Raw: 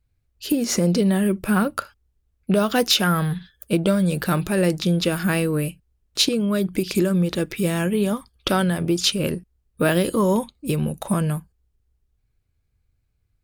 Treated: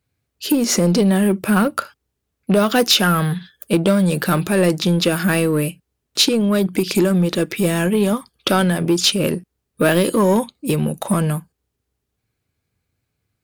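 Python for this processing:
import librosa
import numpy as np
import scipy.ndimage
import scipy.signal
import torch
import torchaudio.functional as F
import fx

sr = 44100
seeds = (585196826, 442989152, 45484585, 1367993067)

p1 = scipy.signal.sosfilt(scipy.signal.butter(2, 150.0, 'highpass', fs=sr, output='sos'), x)
p2 = np.clip(p1, -10.0 ** (-20.5 / 20.0), 10.0 ** (-20.5 / 20.0))
p3 = p1 + (p2 * 10.0 ** (-3.5 / 20.0))
y = p3 * 10.0 ** (1.5 / 20.0)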